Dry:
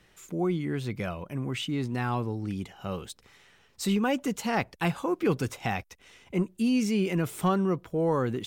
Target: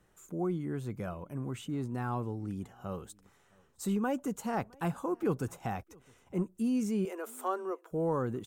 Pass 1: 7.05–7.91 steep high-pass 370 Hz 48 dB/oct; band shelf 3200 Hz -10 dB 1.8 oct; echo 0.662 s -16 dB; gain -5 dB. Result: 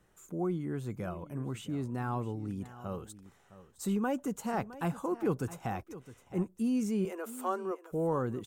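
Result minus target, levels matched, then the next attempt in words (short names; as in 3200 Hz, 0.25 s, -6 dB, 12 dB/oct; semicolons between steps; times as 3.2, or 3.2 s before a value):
echo-to-direct +11.5 dB
7.05–7.91 steep high-pass 370 Hz 48 dB/oct; band shelf 3200 Hz -10 dB 1.8 oct; echo 0.662 s -27.5 dB; gain -5 dB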